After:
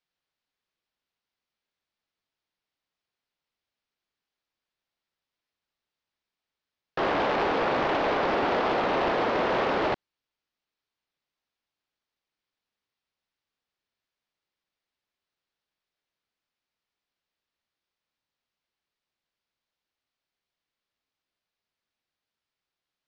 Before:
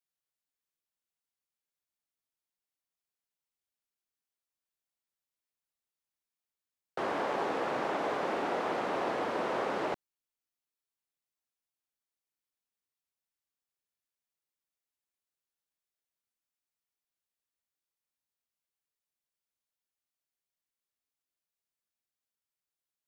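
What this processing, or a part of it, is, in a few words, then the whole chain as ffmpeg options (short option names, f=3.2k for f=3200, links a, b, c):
synthesiser wavefolder: -af "aeval=exprs='0.0398*(abs(mod(val(0)/0.0398+3,4)-2)-1)':c=same,lowpass=f=4.9k:w=0.5412,lowpass=f=4.9k:w=1.3066,volume=8.5dB"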